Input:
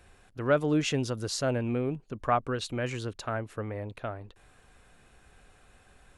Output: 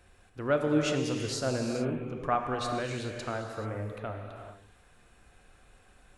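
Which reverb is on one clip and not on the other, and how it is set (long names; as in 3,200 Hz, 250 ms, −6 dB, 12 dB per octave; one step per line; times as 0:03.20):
reverb whose tail is shaped and stops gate 460 ms flat, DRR 2.5 dB
level −3 dB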